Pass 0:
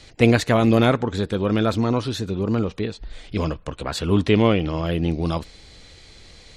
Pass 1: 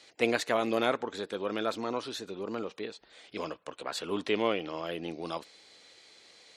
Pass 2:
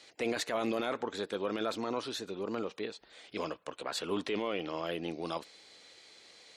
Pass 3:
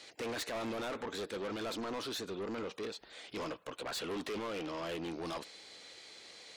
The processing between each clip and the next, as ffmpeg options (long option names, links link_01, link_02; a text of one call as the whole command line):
ffmpeg -i in.wav -af "highpass=390,volume=-7.5dB" out.wav
ffmpeg -i in.wav -af "alimiter=limit=-23dB:level=0:latency=1:release=10" out.wav
ffmpeg -i in.wav -af "asoftclip=type=tanh:threshold=-39dB,volume=3.5dB" out.wav